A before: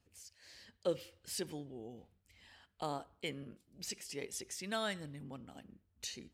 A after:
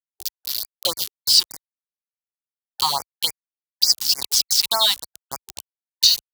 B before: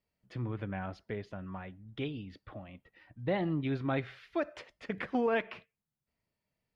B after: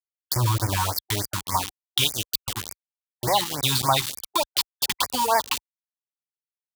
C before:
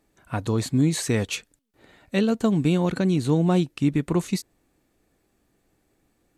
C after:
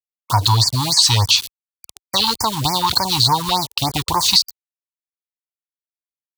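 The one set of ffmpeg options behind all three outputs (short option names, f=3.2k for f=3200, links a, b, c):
-filter_complex "[0:a]aeval=exprs='(tanh(10*val(0)+0.15)-tanh(0.15))/10':c=same,firequalizer=gain_entry='entry(110,0);entry(170,-21);entry(450,-16);entry(950,12);entry(1500,-5);entry(4500,14);entry(6800,-3);entry(13000,-15)':delay=0.05:min_phase=1,asplit=2[a][b];[b]aecho=0:1:111|222:0.0631|0.0215[c];[a][c]amix=inputs=2:normalize=0,aeval=exprs='val(0)*gte(abs(val(0)),0.00794)':c=same,acompressor=threshold=-47dB:ratio=1.5,tiltshelf=f=1.4k:g=3.5,aexciter=amount=4.2:drive=2.8:freq=3k,highpass=50,alimiter=level_in=20dB:limit=-1dB:release=50:level=0:latency=1,afftfilt=real='re*(1-between(b*sr/1024,520*pow(3400/520,0.5+0.5*sin(2*PI*3.4*pts/sr))/1.41,520*pow(3400/520,0.5+0.5*sin(2*PI*3.4*pts/sr))*1.41))':imag='im*(1-between(b*sr/1024,520*pow(3400/520,0.5+0.5*sin(2*PI*3.4*pts/sr))/1.41,520*pow(3400/520,0.5+0.5*sin(2*PI*3.4*pts/sr))*1.41))':win_size=1024:overlap=0.75,volume=-1dB"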